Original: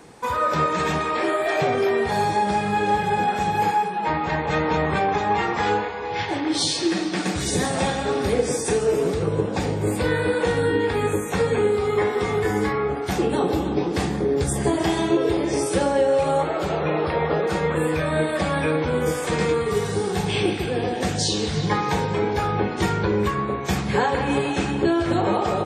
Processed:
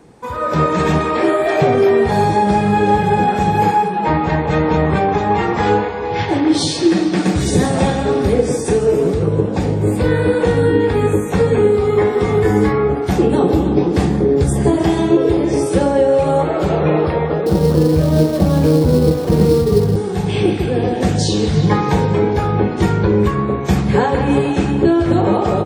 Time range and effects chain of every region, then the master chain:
0:17.46–0:19.96: tilt shelving filter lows +9 dB, about 1,100 Hz + sample-rate reduction 4,800 Hz, jitter 20%
whole clip: tilt shelving filter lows +5 dB, about 630 Hz; automatic gain control; level −1 dB

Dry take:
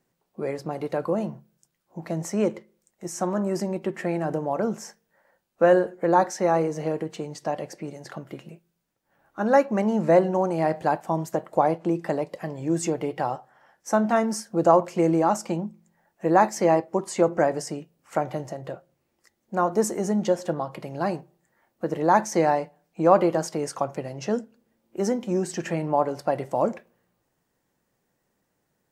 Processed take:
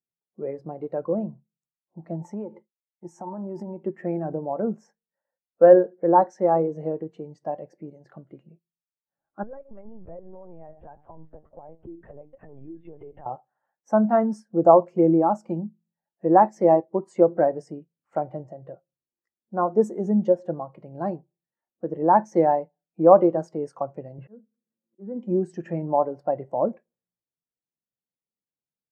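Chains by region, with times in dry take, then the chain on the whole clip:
0:02.15–0:03.84: downward expander −52 dBFS + parametric band 880 Hz +13.5 dB 0.22 octaves + downward compressor 16 to 1, threshold −25 dBFS
0:09.43–0:13.26: mains-hum notches 50/100/150/200/250/300 Hz + downward compressor 8 to 1, threshold −32 dBFS + linear-prediction vocoder at 8 kHz pitch kept
0:24.18–0:25.16: loudspeaker in its box 110–2,700 Hz, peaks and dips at 120 Hz +7 dB, 190 Hz +8 dB, 350 Hz +4 dB, 520 Hz +3 dB, 1,100 Hz +6 dB, 1,600 Hz +5 dB + volume swells 532 ms
whole clip: parametric band 9,800 Hz −7.5 dB 2.8 octaves; every bin expanded away from the loudest bin 1.5 to 1; level +3 dB

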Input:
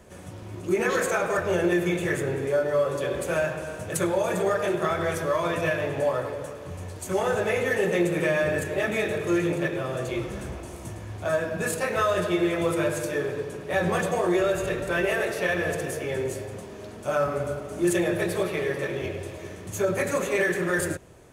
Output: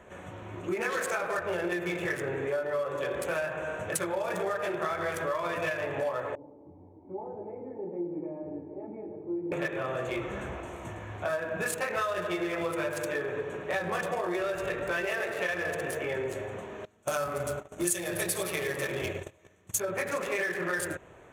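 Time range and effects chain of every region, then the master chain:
0:06.35–0:09.52: formant resonators in series u + parametric band 1,600 Hz −3 dB 0.94 octaves
0:16.85–0:19.80: noise gate −34 dBFS, range −24 dB + bass and treble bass +5 dB, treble +14 dB
whole clip: adaptive Wiener filter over 9 samples; low-shelf EQ 480 Hz −12 dB; downward compressor 4 to 1, threshold −35 dBFS; level +6 dB

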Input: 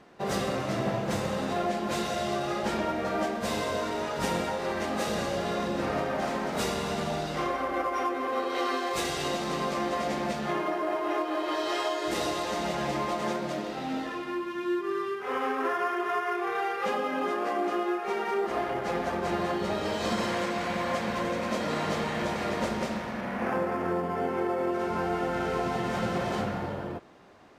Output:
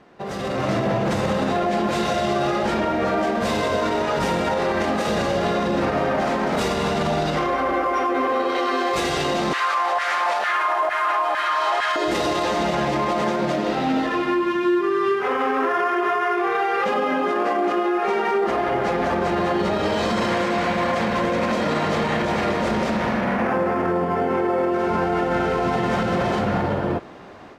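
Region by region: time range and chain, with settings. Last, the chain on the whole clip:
0:09.53–0:11.96: linear delta modulator 64 kbit/s, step −47.5 dBFS + high-pass filter 300 Hz + auto-filter high-pass saw down 2.2 Hz 750–1,700 Hz
whole clip: high-shelf EQ 6,300 Hz −10 dB; brickwall limiter −27 dBFS; automatic gain control gain up to 10 dB; level +3.5 dB

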